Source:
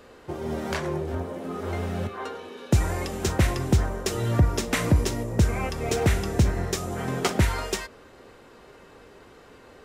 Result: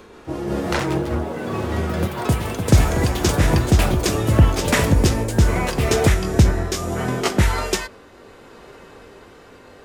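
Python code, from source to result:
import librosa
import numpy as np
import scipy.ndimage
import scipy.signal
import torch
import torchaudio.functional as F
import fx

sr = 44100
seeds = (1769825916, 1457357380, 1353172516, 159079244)

y = fx.pitch_glide(x, sr, semitones=-2.0, runs='ending unshifted')
y = fx.echo_pitch(y, sr, ms=250, semitones=5, count=3, db_per_echo=-6.0)
y = y * 10.0 ** (7.0 / 20.0)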